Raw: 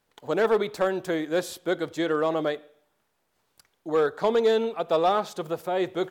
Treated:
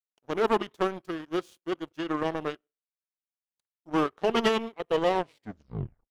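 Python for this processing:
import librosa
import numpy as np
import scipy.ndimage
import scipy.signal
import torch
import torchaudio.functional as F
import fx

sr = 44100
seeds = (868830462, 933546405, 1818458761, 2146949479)

y = fx.tape_stop_end(x, sr, length_s=1.05)
y = fx.power_curve(y, sr, exponent=2.0)
y = fx.formant_shift(y, sr, semitones=-3)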